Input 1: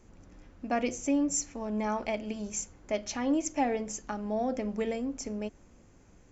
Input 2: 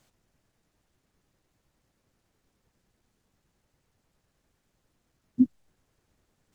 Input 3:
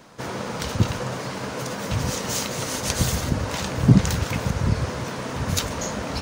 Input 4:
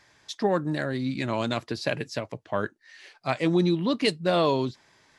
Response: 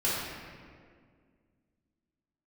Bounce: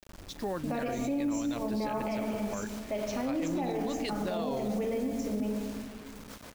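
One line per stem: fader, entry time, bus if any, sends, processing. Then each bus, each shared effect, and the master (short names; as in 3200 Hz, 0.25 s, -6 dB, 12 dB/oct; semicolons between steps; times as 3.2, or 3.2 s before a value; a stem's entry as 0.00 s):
-1.0 dB, 0.00 s, send -8.5 dB, LPF 2300 Hz 6 dB/oct; bell 1600 Hz -5 dB 0.36 oct
-11.0 dB, 0.00 s, no send, dry
-18.0 dB, 2.05 s, send -17 dB, low shelf 140 Hz -7.5 dB; negative-ratio compressor -33 dBFS, ratio -0.5
-7.5 dB, 0.00 s, no send, dry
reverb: on, RT60 2.0 s, pre-delay 3 ms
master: bit-crush 8-bit; limiter -24.5 dBFS, peak gain reduction 11.5 dB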